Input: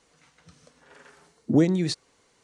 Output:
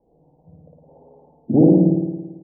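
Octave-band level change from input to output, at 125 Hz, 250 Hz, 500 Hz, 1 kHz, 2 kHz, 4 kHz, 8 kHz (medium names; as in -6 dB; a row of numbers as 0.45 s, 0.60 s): +8.0 dB, +8.5 dB, +8.5 dB, +6.5 dB, under -40 dB, under -40 dB, under -35 dB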